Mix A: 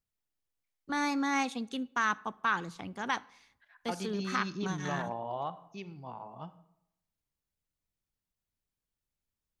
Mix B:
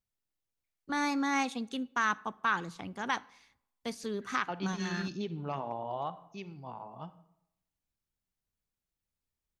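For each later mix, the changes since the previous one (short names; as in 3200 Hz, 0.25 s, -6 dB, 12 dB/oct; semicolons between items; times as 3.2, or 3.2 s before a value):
second voice: entry +0.60 s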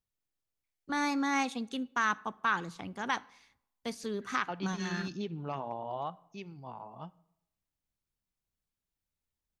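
second voice: send -8.0 dB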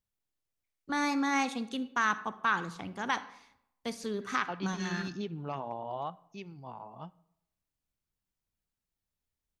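first voice: send +9.5 dB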